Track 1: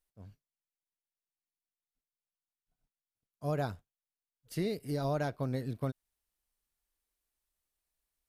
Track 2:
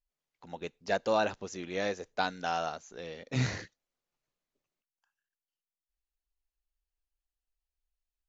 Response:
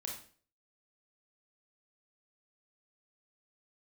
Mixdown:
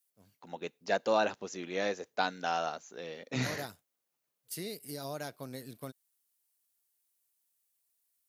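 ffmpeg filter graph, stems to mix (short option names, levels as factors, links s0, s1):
-filter_complex "[0:a]crystalizer=i=4.5:c=0,volume=0.422[s0];[1:a]volume=1[s1];[s0][s1]amix=inputs=2:normalize=0,highpass=170"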